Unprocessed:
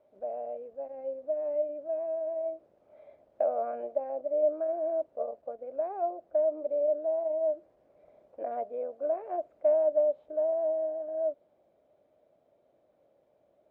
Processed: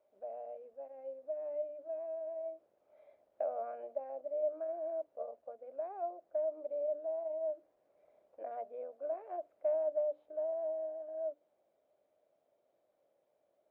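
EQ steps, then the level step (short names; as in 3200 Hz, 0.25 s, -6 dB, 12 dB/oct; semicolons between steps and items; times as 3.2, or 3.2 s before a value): low shelf 310 Hz -11 dB; notches 60/120/180/240/300 Hz; -6.0 dB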